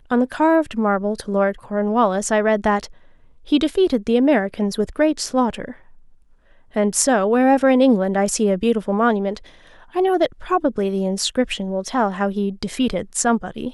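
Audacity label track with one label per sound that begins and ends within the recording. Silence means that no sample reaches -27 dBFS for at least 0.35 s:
3.490000	5.710000	sound
6.760000	9.370000	sound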